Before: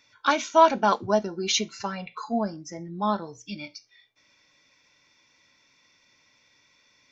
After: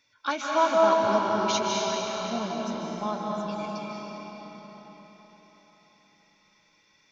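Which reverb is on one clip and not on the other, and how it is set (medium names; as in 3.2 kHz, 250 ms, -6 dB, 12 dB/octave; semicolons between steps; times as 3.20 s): algorithmic reverb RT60 5 s, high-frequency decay 0.8×, pre-delay 115 ms, DRR -3.5 dB; trim -6.5 dB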